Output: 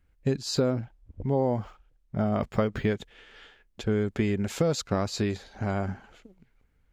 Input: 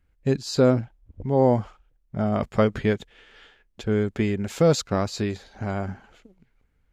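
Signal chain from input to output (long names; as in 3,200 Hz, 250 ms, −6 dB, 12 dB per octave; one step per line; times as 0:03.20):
downward compressor 6 to 1, threshold −21 dBFS, peak gain reduction 8.5 dB
0:00.57–0:02.88: linearly interpolated sample-rate reduction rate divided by 2×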